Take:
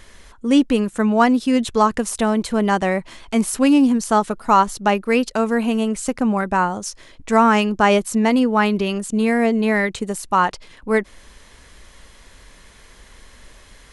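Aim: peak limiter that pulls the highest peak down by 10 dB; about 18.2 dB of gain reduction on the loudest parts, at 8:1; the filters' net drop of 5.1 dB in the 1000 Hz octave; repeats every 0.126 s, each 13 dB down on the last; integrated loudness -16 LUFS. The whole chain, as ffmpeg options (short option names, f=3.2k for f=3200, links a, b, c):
-af "equalizer=f=1k:t=o:g=-6.5,acompressor=threshold=-31dB:ratio=8,alimiter=level_in=4.5dB:limit=-24dB:level=0:latency=1,volume=-4.5dB,aecho=1:1:126|252|378:0.224|0.0493|0.0108,volume=22.5dB"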